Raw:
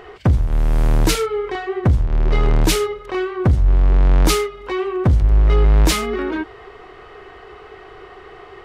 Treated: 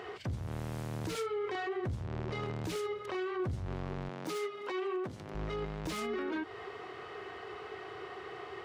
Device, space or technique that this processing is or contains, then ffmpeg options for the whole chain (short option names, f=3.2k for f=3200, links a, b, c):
broadcast voice chain: -filter_complex "[0:a]highpass=f=87:w=0.5412,highpass=f=87:w=1.3066,deesser=0.55,acompressor=threshold=-26dB:ratio=4,equalizer=f=5.4k:t=o:w=1.9:g=3,alimiter=limit=-24dB:level=0:latency=1:release=12,asettb=1/sr,asplit=3[a][b][c];[a]atrim=end=4.094[d];[b]atrim=start=4.09:end=5.35,asetpts=PTS-STARTPTS,afade=t=in:d=0.004:c=qsin,afade=t=out:st=1.256:d=0.004:c=qsin,highpass=200[e];[c]atrim=start=5.346[f];[d][e]acrossfade=d=0.004:c1=hsin:c2=qsin[g];[g][f]acrossfade=d=0.004:c1=qsin:c2=hsin,volume=-5dB"